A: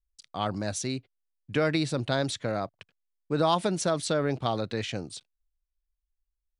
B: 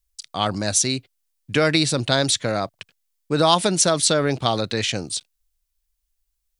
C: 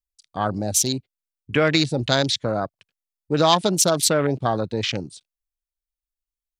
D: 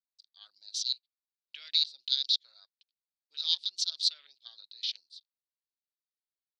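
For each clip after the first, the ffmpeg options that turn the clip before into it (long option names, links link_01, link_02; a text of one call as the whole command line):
ffmpeg -i in.wav -af "highshelf=frequency=3000:gain=11.5,volume=6dB" out.wav
ffmpeg -i in.wav -af "afwtdn=0.0501" out.wav
ffmpeg -i in.wav -af "asuperpass=centerf=4200:order=4:qfactor=3,volume=-1.5dB" out.wav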